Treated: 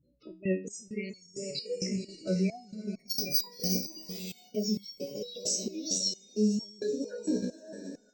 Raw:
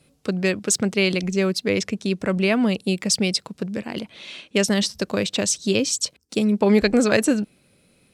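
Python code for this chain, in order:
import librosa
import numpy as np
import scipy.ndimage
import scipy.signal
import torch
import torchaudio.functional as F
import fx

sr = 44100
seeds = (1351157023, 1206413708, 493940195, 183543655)

p1 = fx.spec_dilate(x, sr, span_ms=60)
p2 = fx.peak_eq(p1, sr, hz=5700.0, db=14.5, octaves=1.7)
p3 = fx.vibrato(p2, sr, rate_hz=2.9, depth_cents=51.0)
p4 = fx.resample_bad(p3, sr, factor=4, down='none', up='zero_stuff', at=(2.63, 4.59))
p5 = fx.high_shelf(p4, sr, hz=2500.0, db=-11.0)
p6 = fx.spec_gate(p5, sr, threshold_db=-10, keep='strong')
p7 = p6 + fx.echo_diffused(p6, sr, ms=564, feedback_pct=46, wet_db=-9, dry=0)
p8 = fx.level_steps(p7, sr, step_db=10)
p9 = fx.notch(p8, sr, hz=6300.0, q=14.0)
y = fx.resonator_held(p9, sr, hz=4.4, low_hz=62.0, high_hz=1100.0)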